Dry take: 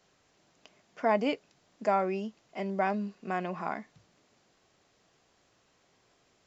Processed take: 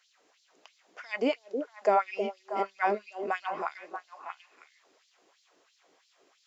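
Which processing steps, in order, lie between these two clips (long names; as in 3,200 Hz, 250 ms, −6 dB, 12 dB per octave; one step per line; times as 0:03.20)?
auto-filter high-pass sine 3 Hz 310–4,400 Hz
echo through a band-pass that steps 317 ms, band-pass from 390 Hz, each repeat 1.4 octaves, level −3 dB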